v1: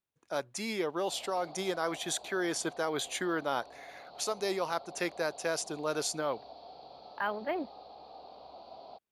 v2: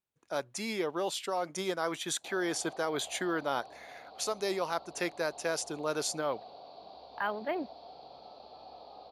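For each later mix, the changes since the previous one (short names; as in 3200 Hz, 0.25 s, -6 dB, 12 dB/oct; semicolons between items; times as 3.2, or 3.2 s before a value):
background: entry +1.20 s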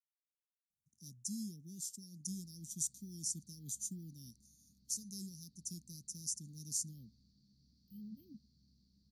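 speech: entry +0.70 s; master: add Chebyshev band-stop 210–5800 Hz, order 4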